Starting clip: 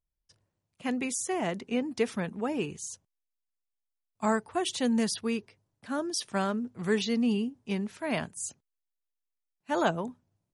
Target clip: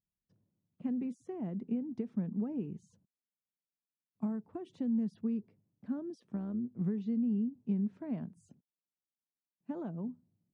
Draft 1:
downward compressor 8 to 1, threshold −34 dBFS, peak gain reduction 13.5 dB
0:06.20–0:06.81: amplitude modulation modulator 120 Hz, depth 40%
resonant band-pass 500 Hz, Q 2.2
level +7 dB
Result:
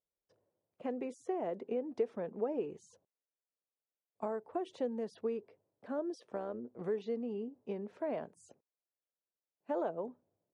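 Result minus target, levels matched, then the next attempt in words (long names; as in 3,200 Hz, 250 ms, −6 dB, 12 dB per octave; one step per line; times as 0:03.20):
500 Hz band +12.5 dB
downward compressor 8 to 1, threshold −34 dBFS, peak gain reduction 13.5 dB
0:06.20–0:06.81: amplitude modulation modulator 120 Hz, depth 40%
resonant band-pass 200 Hz, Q 2.2
level +7 dB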